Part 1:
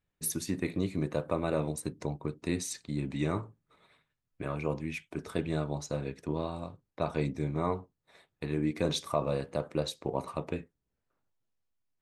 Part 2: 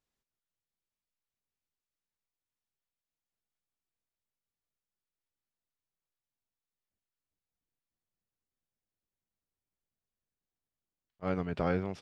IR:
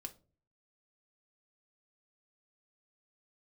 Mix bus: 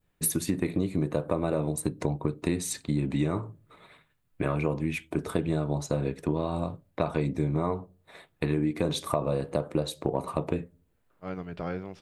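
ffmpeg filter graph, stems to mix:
-filter_complex "[0:a]equalizer=frequency=5600:width_type=o:width=0.72:gain=-8,acontrast=85,adynamicequalizer=threshold=0.00447:dfrequency=2100:dqfactor=0.83:tfrequency=2100:tqfactor=0.83:attack=5:release=100:ratio=0.375:range=3:mode=cutabove:tftype=bell,volume=2dB,asplit=2[link_01][link_02];[link_02]volume=-10.5dB[link_03];[1:a]volume=-6dB,asplit=2[link_04][link_05];[link_05]volume=-4dB[link_06];[2:a]atrim=start_sample=2205[link_07];[link_03][link_06]amix=inputs=2:normalize=0[link_08];[link_08][link_07]afir=irnorm=-1:irlink=0[link_09];[link_01][link_04][link_09]amix=inputs=3:normalize=0,acompressor=threshold=-23dB:ratio=6"

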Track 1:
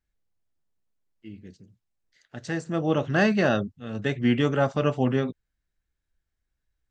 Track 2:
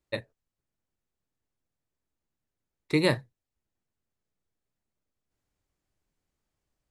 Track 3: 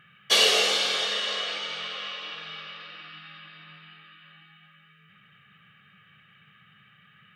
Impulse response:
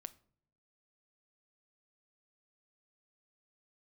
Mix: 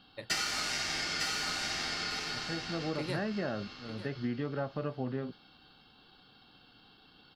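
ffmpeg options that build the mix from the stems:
-filter_complex "[0:a]lowpass=2000,volume=-9dB[link_01];[1:a]adelay=50,volume=-12dB,asplit=2[link_02][link_03];[link_03]volume=-16dB[link_04];[2:a]highpass=frequency=730:width=0.5412,highpass=frequency=730:width=1.3066,bandreject=frequency=7700:width=18,aeval=exprs='val(0)*sin(2*PI*1500*n/s)':channel_layout=same,volume=0dB,asplit=2[link_05][link_06];[link_06]volume=-6dB[link_07];[link_04][link_07]amix=inputs=2:normalize=0,aecho=0:1:897|1794|2691:1|0.16|0.0256[link_08];[link_01][link_02][link_05][link_08]amix=inputs=4:normalize=0,acompressor=threshold=-30dB:ratio=6"

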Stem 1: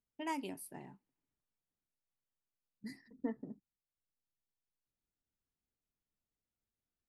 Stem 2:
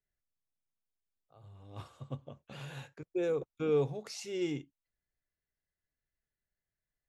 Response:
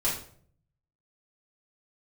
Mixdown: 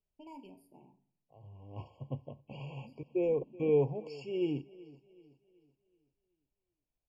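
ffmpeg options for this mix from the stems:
-filter_complex "[0:a]asoftclip=type=hard:threshold=-36dB,volume=-10dB,asplit=2[link_01][link_02];[link_02]volume=-16dB[link_03];[1:a]lowpass=4000,volume=2dB,asplit=3[link_04][link_05][link_06];[link_05]volume=-20.5dB[link_07];[link_06]apad=whole_len=312554[link_08];[link_01][link_08]sidechaincompress=threshold=-37dB:ratio=8:attack=16:release=586[link_09];[2:a]atrim=start_sample=2205[link_10];[link_03][link_10]afir=irnorm=-1:irlink=0[link_11];[link_07]aecho=0:1:378|756|1134|1512|1890|2268:1|0.41|0.168|0.0689|0.0283|0.0116[link_12];[link_09][link_04][link_11][link_12]amix=inputs=4:normalize=0,lowpass=frequency=2900:poles=1,afftfilt=real='re*eq(mod(floor(b*sr/1024/1100),2),0)':imag='im*eq(mod(floor(b*sr/1024/1100),2),0)':win_size=1024:overlap=0.75"

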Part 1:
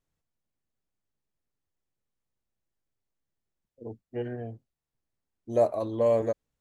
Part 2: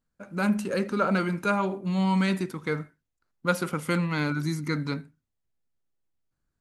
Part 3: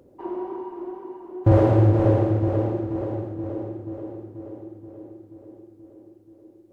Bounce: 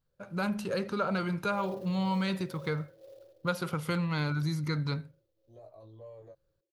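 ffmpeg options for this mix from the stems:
ffmpeg -i stem1.wav -i stem2.wav -i stem3.wav -filter_complex "[0:a]alimiter=limit=-22.5dB:level=0:latency=1:release=37,flanger=delay=18.5:depth=6.3:speed=0.51,volume=-16.5dB[link_01];[1:a]volume=1dB[link_02];[2:a]adynamicequalizer=threshold=0.0158:dfrequency=590:dqfactor=1.5:tfrequency=590:tqfactor=1.5:attack=5:release=100:ratio=0.375:range=2:mode=boostabove:tftype=bell,asplit=3[link_03][link_04][link_05];[link_03]bandpass=frequency=530:width_type=q:width=8,volume=0dB[link_06];[link_04]bandpass=frequency=1840:width_type=q:width=8,volume=-6dB[link_07];[link_05]bandpass=frequency=2480:width_type=q:width=8,volume=-9dB[link_08];[link_06][link_07][link_08]amix=inputs=3:normalize=0,acrusher=bits=4:mode=log:mix=0:aa=0.000001,adelay=50,volume=-18.5dB[link_09];[link_01][link_02][link_09]amix=inputs=3:normalize=0,equalizer=frequency=125:width_type=o:width=1:gain=7,equalizer=frequency=250:width_type=o:width=1:gain=-10,equalizer=frequency=2000:width_type=o:width=1:gain=-5,equalizer=frequency=4000:width_type=o:width=1:gain=4,equalizer=frequency=8000:width_type=o:width=1:gain=-8,acompressor=threshold=-30dB:ratio=2" out.wav

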